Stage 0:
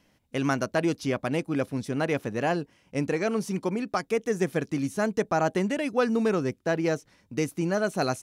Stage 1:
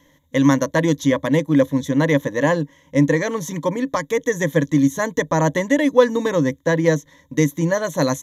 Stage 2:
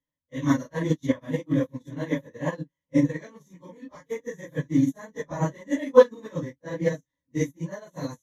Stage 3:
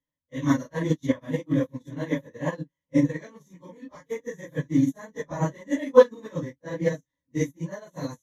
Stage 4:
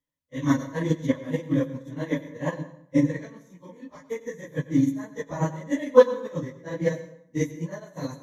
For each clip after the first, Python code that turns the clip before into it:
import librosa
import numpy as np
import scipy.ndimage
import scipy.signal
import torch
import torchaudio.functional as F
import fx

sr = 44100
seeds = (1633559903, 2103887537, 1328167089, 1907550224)

y1 = fx.ripple_eq(x, sr, per_octave=1.1, db=17)
y1 = y1 * 10.0 ** (5.5 / 20.0)
y2 = fx.phase_scramble(y1, sr, seeds[0], window_ms=100)
y2 = fx.low_shelf(y2, sr, hz=180.0, db=7.0)
y2 = fx.upward_expand(y2, sr, threshold_db=-30.0, expansion=2.5)
y2 = y2 * 10.0 ** (-1.0 / 20.0)
y3 = y2
y4 = fx.rev_plate(y3, sr, seeds[1], rt60_s=0.67, hf_ratio=0.75, predelay_ms=80, drr_db=13.0)